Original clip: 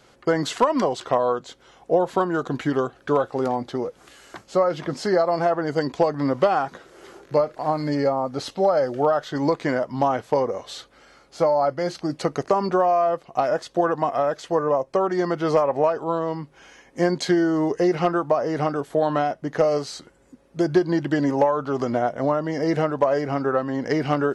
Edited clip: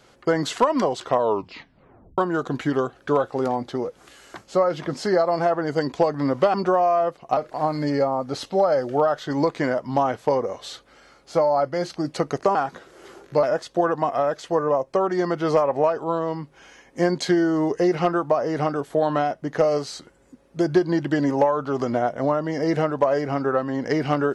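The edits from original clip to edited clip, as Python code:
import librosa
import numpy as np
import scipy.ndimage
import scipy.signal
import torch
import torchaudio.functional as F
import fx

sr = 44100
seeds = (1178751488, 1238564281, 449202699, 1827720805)

y = fx.edit(x, sr, fx.tape_stop(start_s=1.19, length_s=0.99),
    fx.swap(start_s=6.54, length_s=0.88, other_s=12.6, other_length_s=0.83), tone=tone)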